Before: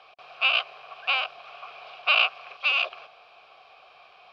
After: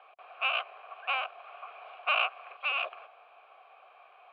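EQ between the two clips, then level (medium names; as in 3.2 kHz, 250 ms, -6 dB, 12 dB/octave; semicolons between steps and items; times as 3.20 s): band-pass 520–2800 Hz; distance through air 360 m; 0.0 dB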